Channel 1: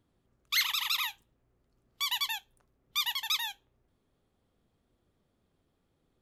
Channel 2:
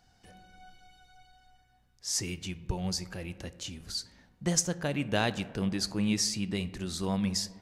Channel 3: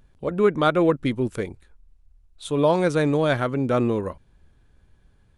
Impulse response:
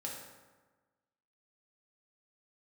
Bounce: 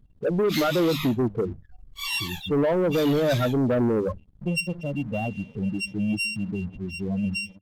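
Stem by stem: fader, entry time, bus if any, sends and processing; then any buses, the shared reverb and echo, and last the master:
-8.5 dB, 0.00 s, no bus, no send, phase scrambler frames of 0.1 s
-3.0 dB, 0.00 s, bus A, no send, sample sorter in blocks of 16 samples; steep low-pass 11000 Hz 96 dB/oct
-1.0 dB, 0.00 s, bus A, no send, notches 50/100/150/200 Hz
bus A: 0.0 dB, loudest bins only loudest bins 8; limiter -18.5 dBFS, peak gain reduction 8 dB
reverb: off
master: sample leveller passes 2

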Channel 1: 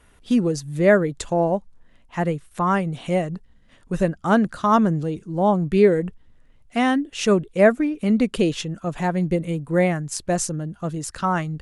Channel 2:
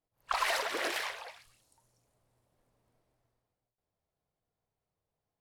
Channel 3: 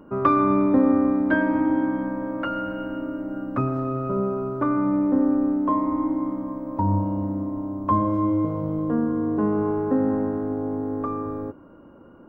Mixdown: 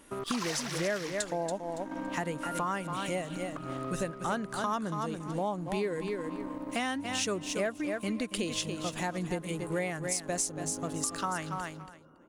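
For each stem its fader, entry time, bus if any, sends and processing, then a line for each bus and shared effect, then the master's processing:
-2.0 dB, 0.00 s, no send, echo send -9.5 dB, high shelf 3500 Hz +10.5 dB
+0.5 dB, 0.00 s, no send, no echo send, bell 5900 Hz +11.5 dB 0.77 oct
-9.5 dB, 0.00 s, no send, echo send -8 dB, negative-ratio compressor -26 dBFS, ratio -0.5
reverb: off
echo: feedback echo 0.281 s, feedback 16%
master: low shelf 450 Hz -7.5 dB; sample leveller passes 1; compressor 4:1, threshold -32 dBFS, peak gain reduction 17.5 dB

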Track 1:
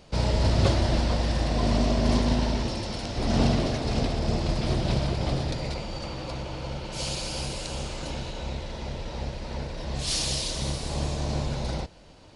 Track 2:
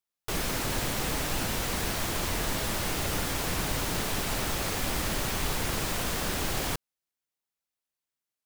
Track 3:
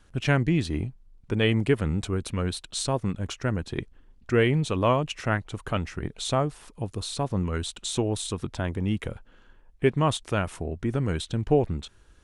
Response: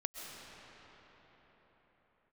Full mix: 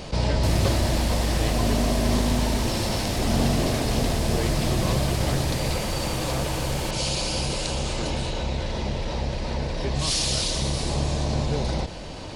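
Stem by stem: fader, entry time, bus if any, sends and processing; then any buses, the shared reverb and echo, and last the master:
-1.5 dB, 0.00 s, no send, fast leveller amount 50%
-4.0 dB, 0.15 s, no send, LPF 9400 Hz 12 dB/oct; high shelf 6700 Hz +9.5 dB
-11.5 dB, 0.00 s, no send, dry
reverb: off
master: notch 1400 Hz, Q 18

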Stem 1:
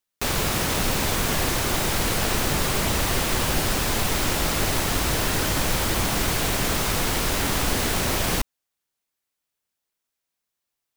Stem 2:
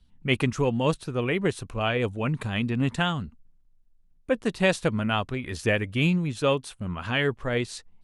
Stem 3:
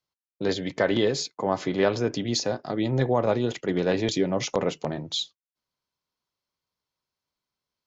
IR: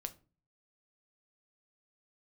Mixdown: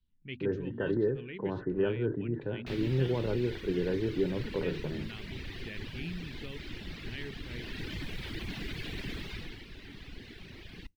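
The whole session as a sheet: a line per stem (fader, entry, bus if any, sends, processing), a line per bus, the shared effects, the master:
7.4 s -13.5 dB -> 8.07 s -6.5 dB -> 9.19 s -6.5 dB -> 9.66 s -18.5 dB, 2.45 s, bus A, send -20.5 dB, reverb removal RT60 1.7 s
-16.0 dB, 0.00 s, bus A, no send, notches 50/100/150/200/250 Hz
-4.0 dB, 0.00 s, no bus, no send, steep low-pass 1700 Hz 96 dB/oct; comb 2.1 ms, depth 43%; sustainer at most 150 dB/s
bus A: 0.0 dB, inverse Chebyshev low-pass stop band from 9700 Hz, stop band 50 dB; limiter -28.5 dBFS, peak gain reduction 7 dB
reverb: on, RT60 0.35 s, pre-delay 6 ms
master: band shelf 840 Hz -13 dB

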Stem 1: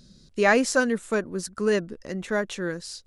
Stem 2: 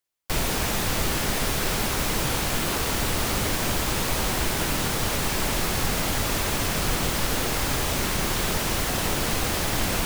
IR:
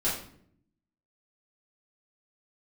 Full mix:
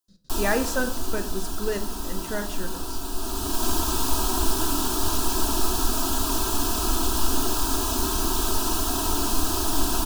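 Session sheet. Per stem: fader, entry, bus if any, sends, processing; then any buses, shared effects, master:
-7.0 dB, 0.00 s, send -15 dB, step gate ".x.xxxxxxxx" 186 bpm -60 dB
0.0 dB, 0.00 s, send -18.5 dB, fixed phaser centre 550 Hz, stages 6; comb 3.1 ms, depth 55%; auto duck -15 dB, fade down 1.35 s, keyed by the first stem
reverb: on, RT60 0.65 s, pre-delay 4 ms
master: notch 2200 Hz, Q 11

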